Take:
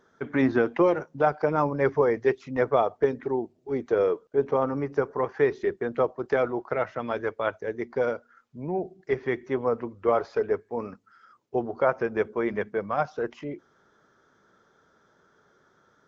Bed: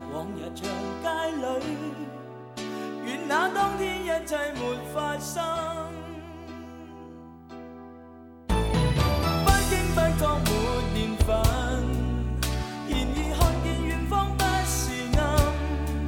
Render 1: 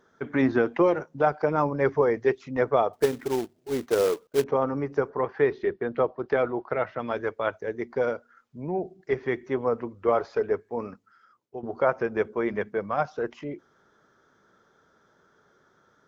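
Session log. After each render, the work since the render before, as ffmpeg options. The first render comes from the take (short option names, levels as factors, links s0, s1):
-filter_complex "[0:a]asettb=1/sr,asplit=3[s0][s1][s2];[s0]atrim=end=2.934[s3];[s1]atrim=start=2.93:end=4.44,asetpts=PTS-STARTPTS,afade=t=in:d=0.004:c=qsin,afade=t=out:st=1.506:d=0.004:c=qsin,acrusher=bits=3:mode=log:mix=0:aa=0.000001[s4];[s2]atrim=start=4.436[s5];[s3][s4]acrossfade=d=0.004:c1=hsin:c2=qsin[s6];[s6][s5]acrossfade=d=0.004:c1=qsin:c2=hsin,asettb=1/sr,asplit=3[s7][s8][s9];[s7]atrim=end=5.104[s10];[s8]atrim=start=5.1:end=6.99,asetpts=PTS-STARTPTS,afade=t=in:d=0.004:c=qsin,afade=t=out:st=1.886:d=0.004:c=qsin,lowpass=f=4700:w=0.5412,lowpass=f=4700:w=1.3066[s11];[s9]atrim=start=6.986[s12];[s10][s11]acrossfade=d=0.004:c1=hsin:c2=qsin[s13];[s13][s12]acrossfade=d=0.004:c1=qsin:c2=hsin,asplit=2[s14][s15];[s14]atrim=end=11.63,asetpts=PTS-STARTPTS,afade=t=out:st=10.88:d=0.75:silence=0.237137[s16];[s15]atrim=start=11.63,asetpts=PTS-STARTPTS,afade=t=in:d=0.004:c=hsin:silence=0.237137[s17];[s16][s17]concat=n=2:v=0:a=1"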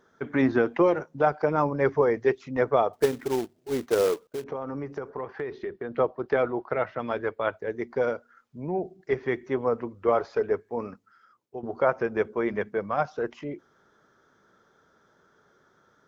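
-filter_complex "[0:a]asettb=1/sr,asplit=3[s0][s1][s2];[s0]atrim=end=4.254[s3];[s1]atrim=start=4.25:end=5.94,asetpts=PTS-STARTPTS,afade=t=in:d=0.004:c=qsin,afade=t=out:st=1.686:d=0.004:c=qsin,acompressor=threshold=0.0355:ratio=6:attack=3.2:release=140:knee=1:detection=peak[s4];[s2]atrim=start=5.936[s5];[s3][s4]acrossfade=d=0.004:c1=hsin:c2=qsin[s6];[s6][s5]acrossfade=d=0.004:c1=qsin:c2=hsin,asettb=1/sr,asplit=3[s7][s8][s9];[s7]atrim=end=7.144[s10];[s8]atrim=start=7.14:end=7.7,asetpts=PTS-STARTPTS,afade=t=in:d=0.004:c=qsin,afade=t=out:st=0.556:d=0.004:c=qsin,equalizer=f=6000:w=4.5:g=-13.5[s11];[s9]atrim=start=7.696[s12];[s10][s11]acrossfade=d=0.004:c1=hsin:c2=qsin[s13];[s13][s12]acrossfade=d=0.004:c1=qsin:c2=hsin"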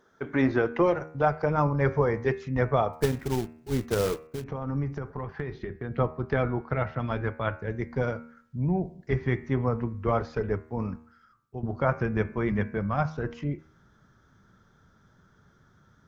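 -af "bandreject=f=78.6:t=h:w=4,bandreject=f=157.2:t=h:w=4,bandreject=f=235.8:t=h:w=4,bandreject=f=314.4:t=h:w=4,bandreject=f=393:t=h:w=4,bandreject=f=471.6:t=h:w=4,bandreject=f=550.2:t=h:w=4,bandreject=f=628.8:t=h:w=4,bandreject=f=707.4:t=h:w=4,bandreject=f=786:t=h:w=4,bandreject=f=864.6:t=h:w=4,bandreject=f=943.2:t=h:w=4,bandreject=f=1021.8:t=h:w=4,bandreject=f=1100.4:t=h:w=4,bandreject=f=1179:t=h:w=4,bandreject=f=1257.6:t=h:w=4,bandreject=f=1336.2:t=h:w=4,bandreject=f=1414.8:t=h:w=4,bandreject=f=1493.4:t=h:w=4,bandreject=f=1572:t=h:w=4,bandreject=f=1650.6:t=h:w=4,bandreject=f=1729.2:t=h:w=4,bandreject=f=1807.8:t=h:w=4,bandreject=f=1886.4:t=h:w=4,bandreject=f=1965:t=h:w=4,bandreject=f=2043.6:t=h:w=4,bandreject=f=2122.2:t=h:w=4,bandreject=f=2200.8:t=h:w=4,bandreject=f=2279.4:t=h:w=4,bandreject=f=2358:t=h:w=4,bandreject=f=2436.6:t=h:w=4,bandreject=f=2515.2:t=h:w=4,bandreject=f=2593.8:t=h:w=4,bandreject=f=2672.4:t=h:w=4,bandreject=f=2751:t=h:w=4,asubboost=boost=9.5:cutoff=140"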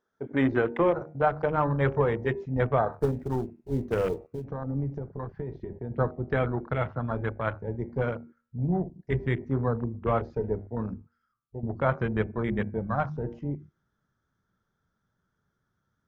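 -af "bandreject=f=50:t=h:w=6,bandreject=f=100:t=h:w=6,bandreject=f=150:t=h:w=6,bandreject=f=200:t=h:w=6,bandreject=f=250:t=h:w=6,bandreject=f=300:t=h:w=6,bandreject=f=350:t=h:w=6,bandreject=f=400:t=h:w=6,afwtdn=0.0178"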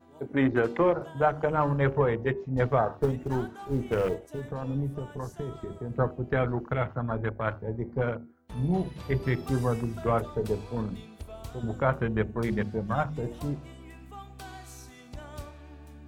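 -filter_complex "[1:a]volume=0.106[s0];[0:a][s0]amix=inputs=2:normalize=0"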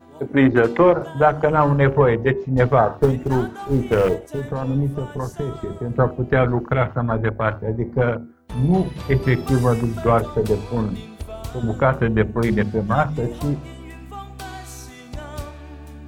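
-af "volume=2.99,alimiter=limit=0.708:level=0:latency=1"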